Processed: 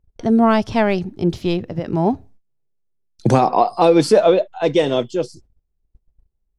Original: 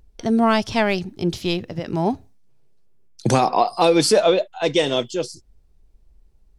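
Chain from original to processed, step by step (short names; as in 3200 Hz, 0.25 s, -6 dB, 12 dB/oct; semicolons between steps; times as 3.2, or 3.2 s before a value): gate -47 dBFS, range -20 dB; high shelf 2100 Hz -11.5 dB; gain +4 dB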